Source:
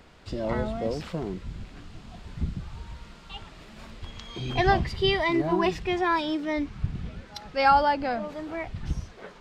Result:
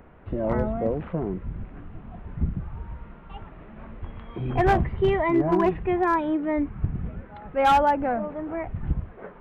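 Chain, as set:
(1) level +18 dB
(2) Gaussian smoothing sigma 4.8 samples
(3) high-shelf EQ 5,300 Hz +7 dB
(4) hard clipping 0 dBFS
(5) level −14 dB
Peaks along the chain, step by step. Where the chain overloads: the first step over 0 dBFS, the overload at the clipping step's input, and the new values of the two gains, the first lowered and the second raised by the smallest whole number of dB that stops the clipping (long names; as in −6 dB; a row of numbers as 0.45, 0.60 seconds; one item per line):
+9.0, +7.5, +7.5, 0.0, −14.0 dBFS
step 1, 7.5 dB
step 1 +10 dB, step 5 −6 dB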